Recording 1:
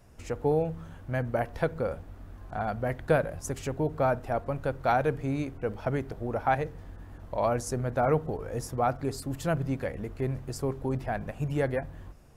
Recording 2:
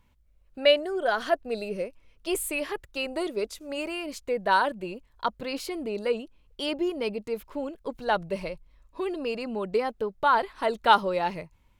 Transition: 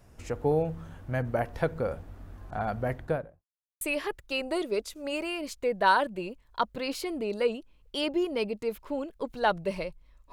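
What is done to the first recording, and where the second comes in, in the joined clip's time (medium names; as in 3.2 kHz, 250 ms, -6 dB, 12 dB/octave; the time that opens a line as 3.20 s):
recording 1
2.84–3.45 s: studio fade out
3.45–3.81 s: mute
3.81 s: go over to recording 2 from 2.46 s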